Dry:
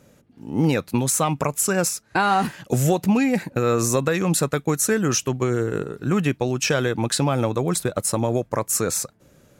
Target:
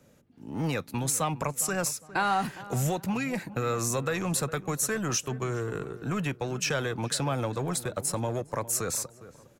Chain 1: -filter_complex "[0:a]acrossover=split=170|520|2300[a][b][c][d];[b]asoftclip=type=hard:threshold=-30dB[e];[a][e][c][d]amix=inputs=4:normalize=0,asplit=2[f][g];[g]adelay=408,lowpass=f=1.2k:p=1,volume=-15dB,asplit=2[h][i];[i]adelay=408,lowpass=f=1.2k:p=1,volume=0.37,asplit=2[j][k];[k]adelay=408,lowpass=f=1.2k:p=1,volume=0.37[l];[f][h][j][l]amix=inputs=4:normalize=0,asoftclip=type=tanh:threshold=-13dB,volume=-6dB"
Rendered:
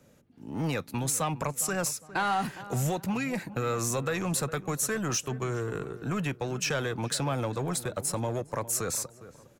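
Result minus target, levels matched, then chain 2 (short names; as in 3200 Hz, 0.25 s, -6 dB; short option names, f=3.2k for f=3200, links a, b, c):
soft clip: distortion +16 dB
-filter_complex "[0:a]acrossover=split=170|520|2300[a][b][c][d];[b]asoftclip=type=hard:threshold=-30dB[e];[a][e][c][d]amix=inputs=4:normalize=0,asplit=2[f][g];[g]adelay=408,lowpass=f=1.2k:p=1,volume=-15dB,asplit=2[h][i];[i]adelay=408,lowpass=f=1.2k:p=1,volume=0.37,asplit=2[j][k];[k]adelay=408,lowpass=f=1.2k:p=1,volume=0.37[l];[f][h][j][l]amix=inputs=4:normalize=0,asoftclip=type=tanh:threshold=-3.5dB,volume=-6dB"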